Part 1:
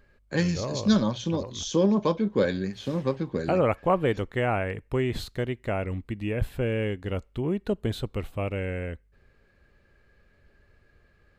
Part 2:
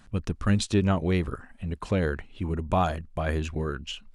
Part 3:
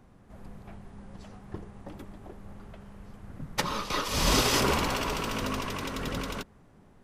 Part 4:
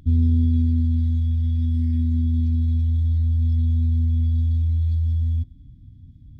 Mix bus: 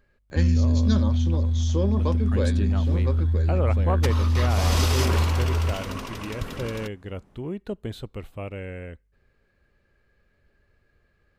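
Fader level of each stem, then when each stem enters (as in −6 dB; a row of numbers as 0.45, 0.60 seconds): −4.5, −9.0, −2.5, −2.0 decibels; 0.00, 1.85, 0.45, 0.30 seconds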